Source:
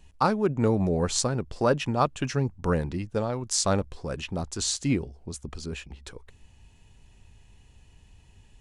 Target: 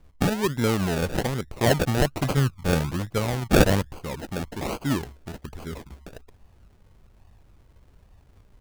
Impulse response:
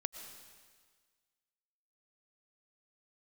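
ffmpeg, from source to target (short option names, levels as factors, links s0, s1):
-filter_complex "[0:a]asplit=3[s0][s1][s2];[s0]afade=t=out:st=1.56:d=0.02[s3];[s1]equalizer=f=125:t=o:w=1:g=6,equalizer=f=2000:t=o:w=1:g=5,equalizer=f=4000:t=o:w=1:g=11,equalizer=f=8000:t=o:w=1:g=8,afade=t=in:st=1.56:d=0.02,afade=t=out:st=3.98:d=0.02[s4];[s2]afade=t=in:st=3.98:d=0.02[s5];[s3][s4][s5]amix=inputs=3:normalize=0,acrusher=samples=34:mix=1:aa=0.000001:lfo=1:lforange=20.4:lforate=1.2"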